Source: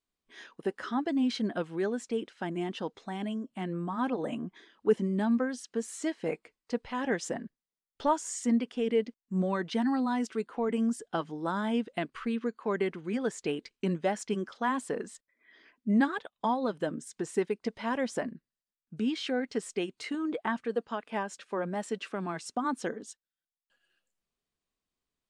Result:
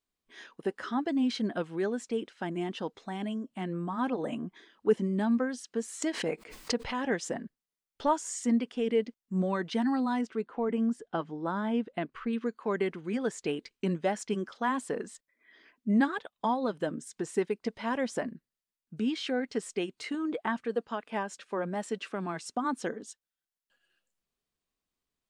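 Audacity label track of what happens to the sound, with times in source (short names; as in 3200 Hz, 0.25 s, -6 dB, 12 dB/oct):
6.020000	7.000000	backwards sustainer at most 84 dB/s
10.210000	12.330000	LPF 2000 Hz 6 dB/oct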